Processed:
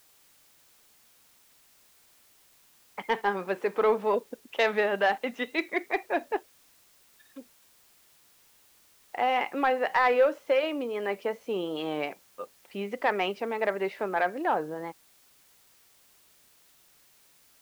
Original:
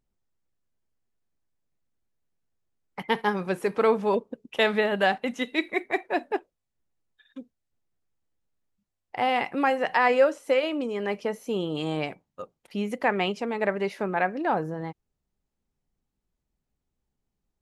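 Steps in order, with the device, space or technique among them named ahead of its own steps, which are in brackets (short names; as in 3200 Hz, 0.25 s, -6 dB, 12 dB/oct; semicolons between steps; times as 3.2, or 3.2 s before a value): tape answering machine (BPF 320–3300 Hz; soft clip -13.5 dBFS, distortion -20 dB; wow and flutter; white noise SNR 30 dB)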